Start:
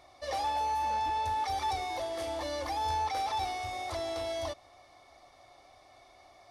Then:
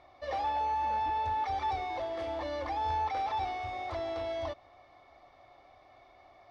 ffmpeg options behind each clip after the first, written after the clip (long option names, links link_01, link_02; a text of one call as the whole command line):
ffmpeg -i in.wav -af "lowpass=2800" out.wav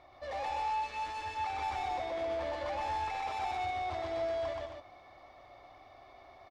ffmpeg -i in.wav -filter_complex "[0:a]asoftclip=type=tanh:threshold=-36.5dB,asplit=2[link_01][link_02];[link_02]aecho=0:1:125.4|215.7|268.2:0.891|0.282|0.447[link_03];[link_01][link_03]amix=inputs=2:normalize=0" out.wav